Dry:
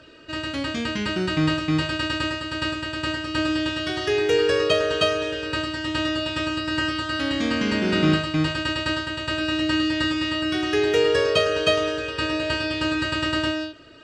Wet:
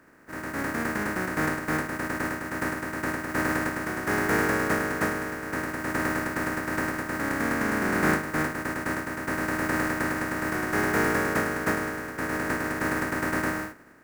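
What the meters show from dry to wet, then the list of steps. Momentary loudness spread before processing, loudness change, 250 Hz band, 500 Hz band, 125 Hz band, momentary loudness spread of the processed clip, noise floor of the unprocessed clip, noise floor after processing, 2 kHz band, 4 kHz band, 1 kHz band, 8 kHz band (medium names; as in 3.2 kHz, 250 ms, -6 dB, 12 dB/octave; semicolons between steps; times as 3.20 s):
7 LU, -4.5 dB, -4.5 dB, -7.5 dB, -4.5 dB, 7 LU, -33 dBFS, -38 dBFS, -0.5 dB, -18.5 dB, +0.5 dB, +2.0 dB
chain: spectral contrast reduction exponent 0.16; peaking EQ 250 Hz +12 dB 1.6 oct; level rider gain up to 7 dB; resonant high shelf 2.4 kHz -11.5 dB, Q 3; trim -8.5 dB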